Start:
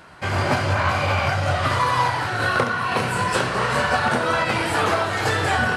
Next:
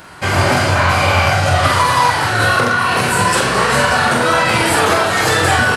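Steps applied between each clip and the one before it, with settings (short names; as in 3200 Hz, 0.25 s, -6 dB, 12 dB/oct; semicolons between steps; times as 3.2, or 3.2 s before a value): high shelf 6700 Hz +10.5 dB; limiter -11.5 dBFS, peak gain reduction 5.5 dB; doubler 45 ms -5 dB; gain +7 dB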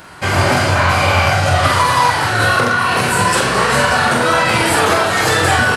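nothing audible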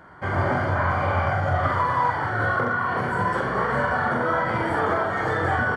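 polynomial smoothing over 41 samples; gain -8.5 dB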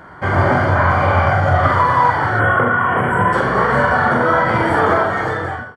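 ending faded out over 0.79 s; spectral delete 2.4–3.33, 3400–7400 Hz; gain +8.5 dB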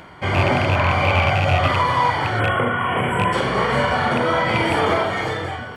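rattling part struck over -15 dBFS, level -19 dBFS; resonant high shelf 2000 Hz +6.5 dB, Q 3; reverse; upward compressor, threshold -23 dBFS; reverse; gain -3 dB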